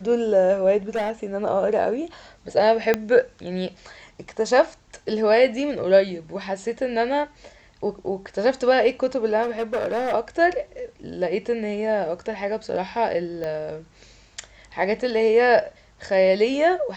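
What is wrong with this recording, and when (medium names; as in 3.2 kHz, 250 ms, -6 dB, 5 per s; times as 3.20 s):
0.89–1.25 s: clipped -21 dBFS
2.94 s: pop -7 dBFS
9.42–10.14 s: clipped -20.5 dBFS
13.44 s: pop -18 dBFS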